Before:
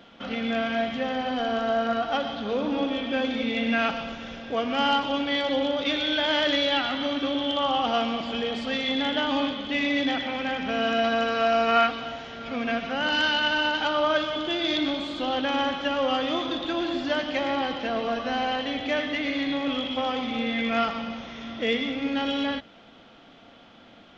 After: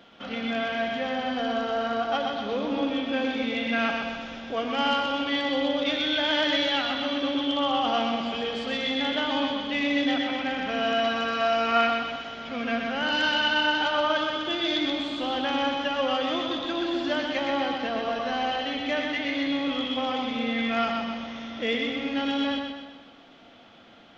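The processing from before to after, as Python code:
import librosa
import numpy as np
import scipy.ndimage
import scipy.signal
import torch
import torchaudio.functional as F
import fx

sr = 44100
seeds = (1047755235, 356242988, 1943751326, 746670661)

p1 = fx.low_shelf(x, sr, hz=230.0, db=-4.0)
p2 = p1 + fx.echo_feedback(p1, sr, ms=126, feedback_pct=48, wet_db=-5, dry=0)
y = p2 * 10.0 ** (-1.5 / 20.0)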